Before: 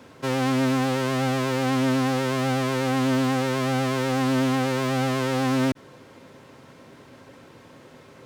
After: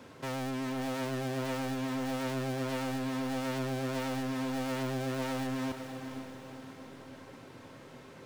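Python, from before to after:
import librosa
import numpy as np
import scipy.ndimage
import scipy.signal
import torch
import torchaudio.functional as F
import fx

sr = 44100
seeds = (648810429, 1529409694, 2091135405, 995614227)

y = np.clip(x, -10.0 ** (-31.0 / 20.0), 10.0 ** (-31.0 / 20.0))
y = fx.echo_diffused(y, sr, ms=492, feedback_pct=46, wet_db=-8.0)
y = y * 10.0 ** (-3.5 / 20.0)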